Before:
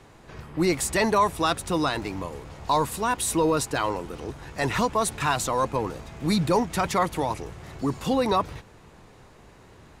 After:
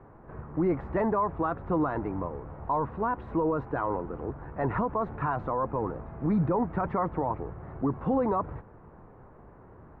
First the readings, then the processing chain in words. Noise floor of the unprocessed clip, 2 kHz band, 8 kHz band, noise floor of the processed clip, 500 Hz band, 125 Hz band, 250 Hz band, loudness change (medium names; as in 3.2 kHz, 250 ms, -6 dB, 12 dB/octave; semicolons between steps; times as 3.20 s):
-52 dBFS, -10.5 dB, under -40 dB, -52 dBFS, -3.5 dB, -1.5 dB, -2.0 dB, -4.5 dB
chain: low-pass 1.4 kHz 24 dB/octave; peak limiter -19 dBFS, peak gain reduction 7 dB